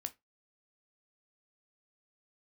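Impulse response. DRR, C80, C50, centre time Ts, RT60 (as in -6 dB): 9.0 dB, 31.5 dB, 21.0 dB, 4 ms, 0.20 s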